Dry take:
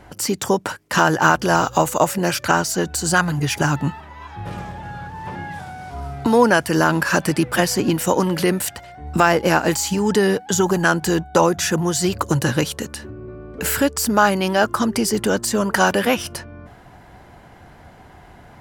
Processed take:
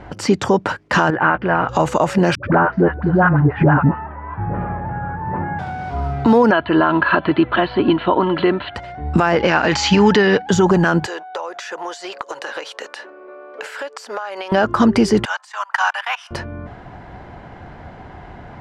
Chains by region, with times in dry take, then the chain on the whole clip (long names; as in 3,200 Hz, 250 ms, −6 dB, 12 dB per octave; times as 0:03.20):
0:01.10–0:01.69: transistor ladder low-pass 2,600 Hz, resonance 40% + double-tracking delay 16 ms −12.5 dB
0:02.35–0:05.59: low-pass filter 1,800 Hz 24 dB per octave + all-pass dispersion highs, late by 85 ms, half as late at 460 Hz
0:06.51–0:08.75: Chebyshev low-pass with heavy ripple 4,300 Hz, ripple 6 dB + comb filter 3 ms, depth 45% + one half of a high-frequency compander encoder only
0:09.35–0:10.42: Butterworth low-pass 7,000 Hz + parametric band 2,600 Hz +9.5 dB 2.7 octaves
0:11.06–0:14.52: high-pass filter 520 Hz 24 dB per octave + downward compressor 16 to 1, threshold −29 dBFS
0:15.25–0:16.31: output level in coarse steps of 20 dB + Butterworth high-pass 790 Hz 48 dB per octave + parametric band 4,500 Hz −3.5 dB 0.34 octaves
whole clip: low-pass filter 5,400 Hz 12 dB per octave; high-shelf EQ 3,700 Hz −10.5 dB; brickwall limiter −12 dBFS; level +8 dB